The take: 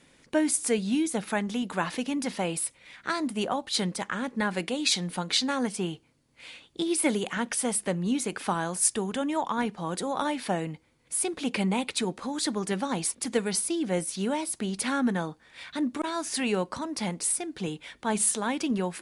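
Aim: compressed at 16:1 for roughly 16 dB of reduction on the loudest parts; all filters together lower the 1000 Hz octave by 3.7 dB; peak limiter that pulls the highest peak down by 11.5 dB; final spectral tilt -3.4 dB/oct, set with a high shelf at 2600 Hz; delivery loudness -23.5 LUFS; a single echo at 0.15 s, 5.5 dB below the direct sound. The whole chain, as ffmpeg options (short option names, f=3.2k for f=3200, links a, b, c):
-af "equalizer=f=1k:t=o:g=-5.5,highshelf=f=2.6k:g=5,acompressor=threshold=-32dB:ratio=16,alimiter=level_in=5.5dB:limit=-24dB:level=0:latency=1,volume=-5.5dB,aecho=1:1:150:0.531,volume=14.5dB"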